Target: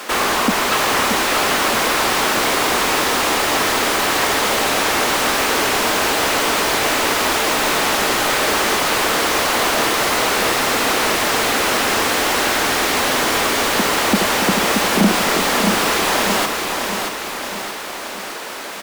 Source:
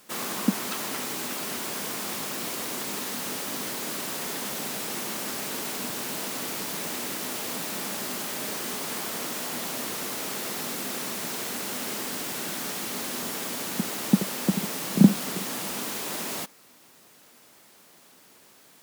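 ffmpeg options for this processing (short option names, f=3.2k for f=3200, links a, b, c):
-filter_complex "[0:a]highpass=220,asplit=2[a][b];[b]highpass=f=720:p=1,volume=38dB,asoftclip=type=tanh:threshold=-4.5dB[c];[a][c]amix=inputs=2:normalize=0,lowpass=f=1.8k:p=1,volume=-6dB,aecho=1:1:627|1254|1881|2508|3135|3762:0.562|0.287|0.146|0.0746|0.038|0.0194"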